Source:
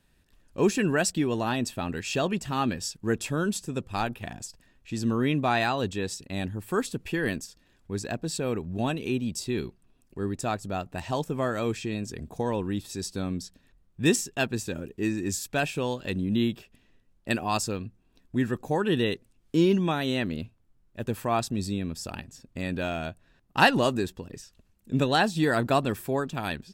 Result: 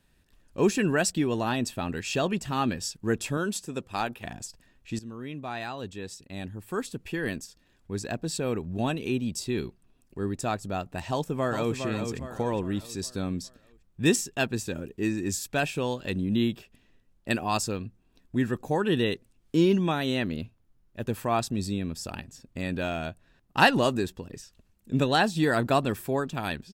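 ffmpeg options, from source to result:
-filter_complex "[0:a]asettb=1/sr,asplit=3[s0][s1][s2];[s0]atrim=end=3.374[s3];[s1]atrim=start=3.37:end=4.25,asetpts=PTS-STARTPTS,afade=t=in:d=0.004:c=qsin,afade=t=out:st=0.876:d=0.004:c=qsin,lowshelf=f=140:g=-11.5[s4];[s2]atrim=start=4.246[s5];[s3][s4]acrossfade=d=0.004:c1=hsin:c2=qsin[s6];[s6][s5]acrossfade=d=0.004:c1=qsin:c2=hsin,asplit=2[s7][s8];[s8]afade=t=in:st=11.1:d=0.01,afade=t=out:st=11.77:d=0.01,aecho=0:1:410|820|1230|1640|2050:0.473151|0.212918|0.0958131|0.0431159|0.0194022[s9];[s7][s9]amix=inputs=2:normalize=0,asettb=1/sr,asplit=3[s10][s11][s12];[s10]atrim=end=20.154[s13];[s11]atrim=start=20.15:end=21.1,asetpts=PTS-STARTPTS,afade=t=in:d=0.004:c=qsin,afade=t=out:st=0.946:d=0.004:c=qsin,bandreject=f=7900:w=12[s14];[s12]atrim=start=21.096[s15];[s13][s14]acrossfade=d=0.004:c1=hsin:c2=qsin[s16];[s16][s15]acrossfade=d=0.004:c1=qsin:c2=hsin,asplit=2[s17][s18];[s17]atrim=end=4.99,asetpts=PTS-STARTPTS,afade=t=out:st=4.986:d=0.004:c=hsin:silence=0.158489[s19];[s18]atrim=start=4.99,asetpts=PTS-STARTPTS,afade=t=in:d=3.28:silence=0.158489[s20];[s19][s20]concat=n=2:v=0:a=1"

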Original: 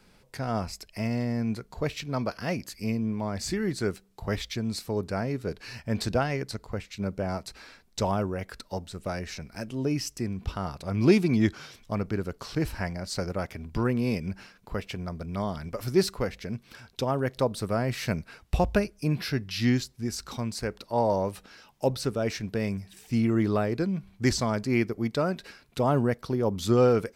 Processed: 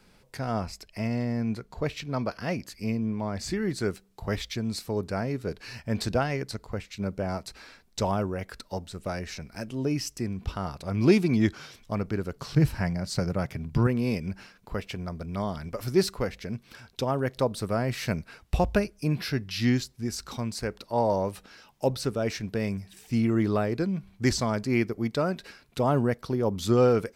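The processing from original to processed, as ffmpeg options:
-filter_complex "[0:a]asettb=1/sr,asplit=3[s0][s1][s2];[s0]atrim=end=0.544[s3];[s1]atrim=start=0.54:end=3.7,asetpts=PTS-STARTPTS,afade=t=in:d=0.004:c=qsin,afade=t=out:st=3.156:d=0.004:c=qsin,highshelf=f=6200:g=-5.5[s4];[s2]atrim=start=3.696[s5];[s3][s4]acrossfade=d=0.004:c1=hsin:c2=qsin[s6];[s6][s5]acrossfade=d=0.004:c1=qsin:c2=hsin,asettb=1/sr,asplit=3[s7][s8][s9];[s7]atrim=end=12.364[s10];[s8]atrim=start=12.36:end=13.87,asetpts=PTS-STARTPTS,afade=t=in:d=0.004:c=qsin,afade=t=out:st=1.506:d=0.004:c=qsin,equalizer=f=140:t=o:w=0.77:g=11.5[s11];[s9]atrim=start=13.866[s12];[s10][s11]acrossfade=d=0.004:c1=hsin:c2=qsin[s13];[s13][s12]acrossfade=d=0.004:c1=qsin:c2=hsin"

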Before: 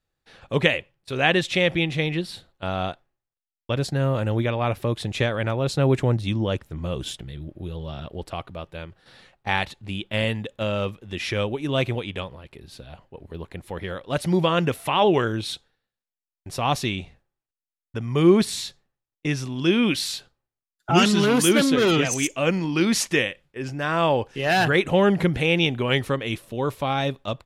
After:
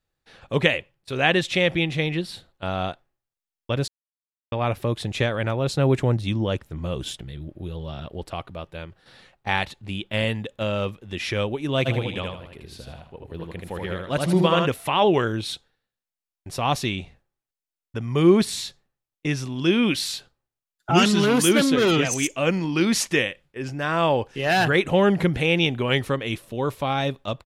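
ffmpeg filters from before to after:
-filter_complex "[0:a]asplit=3[s0][s1][s2];[s0]afade=t=out:st=11.85:d=0.02[s3];[s1]aecho=1:1:78|156|234|312:0.708|0.212|0.0637|0.0191,afade=t=in:st=11.85:d=0.02,afade=t=out:st=14.65:d=0.02[s4];[s2]afade=t=in:st=14.65:d=0.02[s5];[s3][s4][s5]amix=inputs=3:normalize=0,asplit=3[s6][s7][s8];[s6]atrim=end=3.88,asetpts=PTS-STARTPTS,afade=t=out:st=3.876:d=0.004:c=hsin[s9];[s7]atrim=start=3.88:end=4.52,asetpts=PTS-STARTPTS,volume=0[s10];[s8]atrim=start=4.52,asetpts=PTS-STARTPTS,afade=t=in:d=0.004:c=hsin[s11];[s9][s10][s11]concat=n=3:v=0:a=1"

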